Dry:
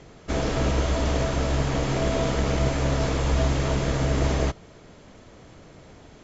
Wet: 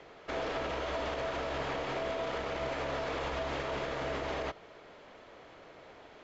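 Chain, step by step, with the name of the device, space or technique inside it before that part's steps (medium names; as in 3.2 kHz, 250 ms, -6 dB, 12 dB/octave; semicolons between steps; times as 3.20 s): DJ mixer with the lows and highs turned down (three-band isolator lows -17 dB, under 380 Hz, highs -20 dB, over 4.2 kHz; peak limiter -27 dBFS, peak gain reduction 11 dB)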